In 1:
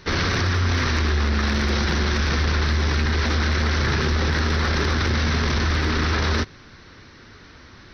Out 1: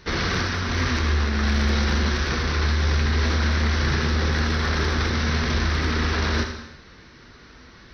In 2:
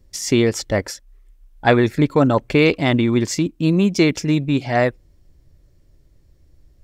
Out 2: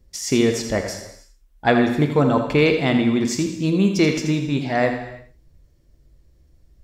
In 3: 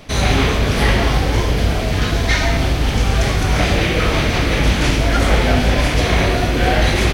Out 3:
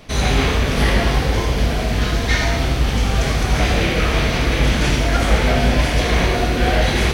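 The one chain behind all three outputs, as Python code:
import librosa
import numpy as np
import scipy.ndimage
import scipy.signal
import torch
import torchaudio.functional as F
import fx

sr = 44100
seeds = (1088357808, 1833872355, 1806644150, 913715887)

y = fx.echo_feedback(x, sr, ms=82, feedback_pct=16, wet_db=-9.5)
y = fx.rev_gated(y, sr, seeds[0], gate_ms=370, shape='falling', drr_db=6.0)
y = F.gain(torch.from_numpy(y), -3.0).numpy()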